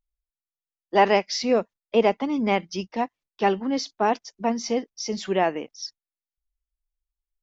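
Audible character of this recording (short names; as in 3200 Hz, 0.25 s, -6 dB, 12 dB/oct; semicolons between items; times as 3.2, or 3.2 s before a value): noise floor -94 dBFS; spectral tilt -4.0 dB/oct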